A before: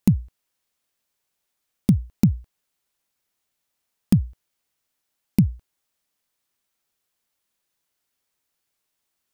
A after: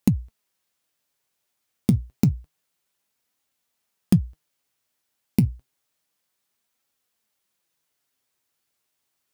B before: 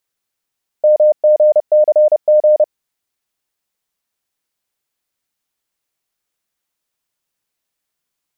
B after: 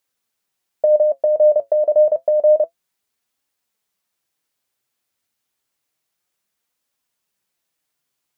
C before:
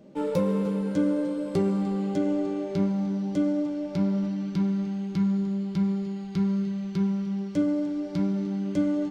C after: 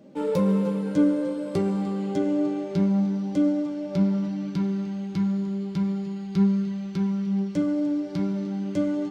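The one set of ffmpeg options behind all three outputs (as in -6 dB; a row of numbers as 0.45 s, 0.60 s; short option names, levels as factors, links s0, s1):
-af "highpass=49,acompressor=threshold=0.2:ratio=6,flanger=delay=3.5:depth=5.6:regen=65:speed=0.29:shape=triangular,volume=1.88"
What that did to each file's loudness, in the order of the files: -1.5 LU, -3.5 LU, +1.5 LU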